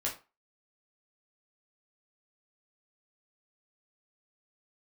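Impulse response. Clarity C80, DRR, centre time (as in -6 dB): 16.5 dB, -4.0 dB, 21 ms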